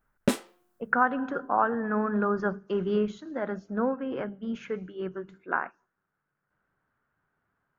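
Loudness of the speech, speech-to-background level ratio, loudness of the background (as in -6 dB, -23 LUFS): -29.5 LUFS, 1.0 dB, -30.5 LUFS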